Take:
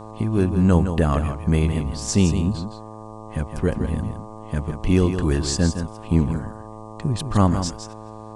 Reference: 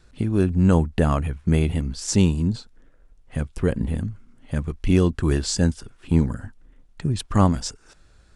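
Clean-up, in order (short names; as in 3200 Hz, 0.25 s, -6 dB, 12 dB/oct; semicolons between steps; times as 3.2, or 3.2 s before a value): de-hum 109 Hz, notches 11; expander -30 dBFS, range -21 dB; inverse comb 0.163 s -8.5 dB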